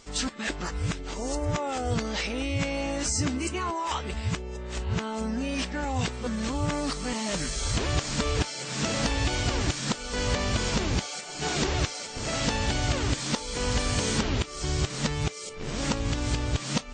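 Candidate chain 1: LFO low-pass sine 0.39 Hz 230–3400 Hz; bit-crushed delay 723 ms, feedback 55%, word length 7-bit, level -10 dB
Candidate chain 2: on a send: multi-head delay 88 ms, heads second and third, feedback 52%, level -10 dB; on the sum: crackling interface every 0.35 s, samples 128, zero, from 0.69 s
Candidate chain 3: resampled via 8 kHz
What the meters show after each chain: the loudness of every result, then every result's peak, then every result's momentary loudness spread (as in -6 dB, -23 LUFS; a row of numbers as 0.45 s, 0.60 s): -28.0 LUFS, -28.0 LUFS, -30.0 LUFS; -10.0 dBFS, -13.0 dBFS, -14.0 dBFS; 5 LU, 5 LU, 5 LU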